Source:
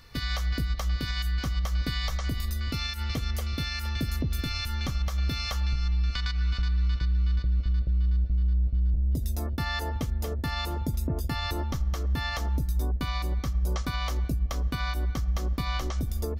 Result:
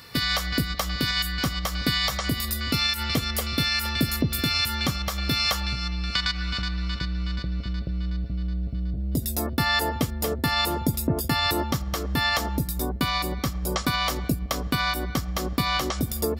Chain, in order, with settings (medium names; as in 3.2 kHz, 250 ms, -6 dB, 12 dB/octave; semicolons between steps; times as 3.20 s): high-pass 130 Hz 12 dB/octave; treble shelf 5.6 kHz +6 dB; band-stop 6.2 kHz, Q 8.1; trim +8.5 dB